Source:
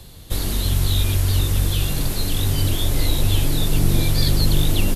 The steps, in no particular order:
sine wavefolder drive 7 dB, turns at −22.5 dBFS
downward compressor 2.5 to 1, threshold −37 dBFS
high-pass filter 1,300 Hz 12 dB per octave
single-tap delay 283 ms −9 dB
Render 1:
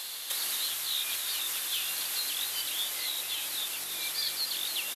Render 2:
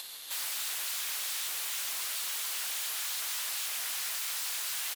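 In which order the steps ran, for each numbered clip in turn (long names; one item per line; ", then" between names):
single-tap delay, then downward compressor, then high-pass filter, then sine wavefolder
single-tap delay, then sine wavefolder, then downward compressor, then high-pass filter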